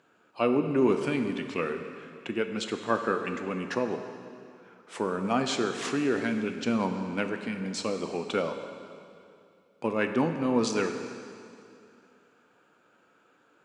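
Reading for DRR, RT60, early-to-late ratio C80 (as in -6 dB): 6.0 dB, 2.5 s, 8.0 dB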